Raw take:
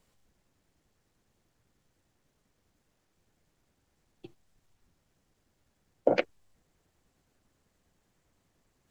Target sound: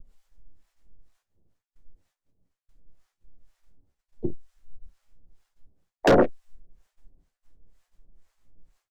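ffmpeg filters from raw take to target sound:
ffmpeg -i in.wav -filter_complex "[0:a]asplit=4[link_01][link_02][link_03][link_04];[link_02]asetrate=33038,aresample=44100,atempo=1.33484,volume=-8dB[link_05];[link_03]asetrate=37084,aresample=44100,atempo=1.18921,volume=-13dB[link_06];[link_04]asetrate=55563,aresample=44100,atempo=0.793701,volume=-15dB[link_07];[link_01][link_05][link_06][link_07]amix=inputs=4:normalize=0,lowshelf=frequency=88:gain=8,aecho=1:1:11|29|50:0.422|0.355|0.158,asplit=2[link_08][link_09];[link_09]aeval=exprs='(mod(8.41*val(0)+1,2)-1)/8.41':channel_layout=same,volume=-4dB[link_10];[link_08][link_10]amix=inputs=2:normalize=0,afwtdn=0.00794,acrossover=split=650[link_11][link_12];[link_11]aeval=exprs='val(0)*(1-1/2+1/2*cos(2*PI*2.1*n/s))':channel_layout=same[link_13];[link_12]aeval=exprs='val(0)*(1-1/2-1/2*cos(2*PI*2.1*n/s))':channel_layout=same[link_14];[link_13][link_14]amix=inputs=2:normalize=0,aeval=exprs='0.237*sin(PI/2*3.16*val(0)/0.237)':channel_layout=same,agate=range=-33dB:threshold=-58dB:ratio=3:detection=peak" out.wav

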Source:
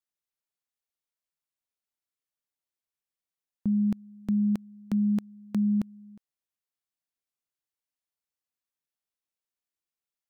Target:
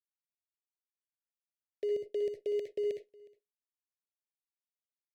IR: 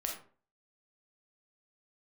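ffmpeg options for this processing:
-filter_complex "[0:a]agate=range=-28dB:threshold=-36dB:ratio=16:detection=peak,highpass=frequency=82:poles=1,equalizer=frequency=130:width_type=o:width=0.35:gain=-8,acompressor=threshold=-28dB:ratio=2.5,asplit=2[link_01][link_02];[link_02]highpass=frequency=720:poles=1,volume=15dB,asoftclip=type=tanh:threshold=-21.5dB[link_03];[link_01][link_03]amix=inputs=2:normalize=0,lowpass=frequency=1500:poles=1,volume=-6dB,volume=30dB,asoftclip=hard,volume=-30dB,aecho=1:1:727:0.0631,asplit=2[link_04][link_05];[1:a]atrim=start_sample=2205,asetrate=70560,aresample=44100,adelay=122[link_06];[link_05][link_06]afir=irnorm=-1:irlink=0,volume=-2.5dB[link_07];[link_04][link_07]amix=inputs=2:normalize=0,asetrate=88200,aresample=44100,asuperstop=centerf=1100:order=12:qfactor=0.88"

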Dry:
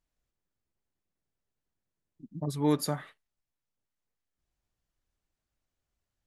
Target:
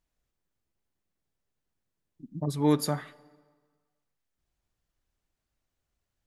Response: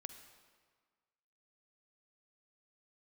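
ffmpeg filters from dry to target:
-filter_complex "[0:a]asplit=2[link_01][link_02];[1:a]atrim=start_sample=2205,highshelf=frequency=7300:gain=-9[link_03];[link_02][link_03]afir=irnorm=-1:irlink=0,volume=-4.5dB[link_04];[link_01][link_04]amix=inputs=2:normalize=0"

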